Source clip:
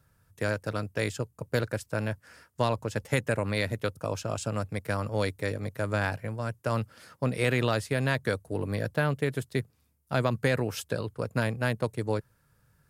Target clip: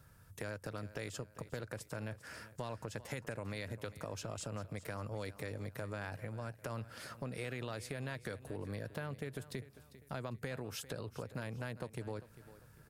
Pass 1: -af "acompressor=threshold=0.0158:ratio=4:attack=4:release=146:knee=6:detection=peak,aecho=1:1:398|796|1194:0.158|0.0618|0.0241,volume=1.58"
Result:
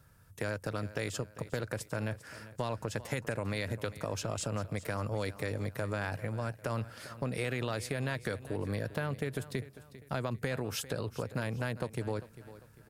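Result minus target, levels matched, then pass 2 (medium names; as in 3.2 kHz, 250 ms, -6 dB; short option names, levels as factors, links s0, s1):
compression: peak gain reduction -7.5 dB
-af "acompressor=threshold=0.00501:ratio=4:attack=4:release=146:knee=6:detection=peak,aecho=1:1:398|796|1194:0.158|0.0618|0.0241,volume=1.58"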